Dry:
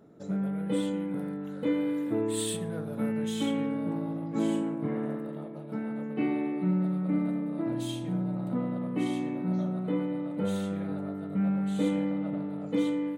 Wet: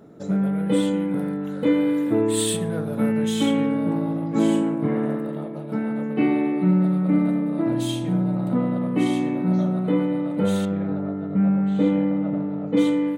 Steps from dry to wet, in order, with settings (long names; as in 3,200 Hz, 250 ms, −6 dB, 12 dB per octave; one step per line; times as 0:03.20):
0:10.65–0:12.77: head-to-tape spacing loss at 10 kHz 24 dB
level +8.5 dB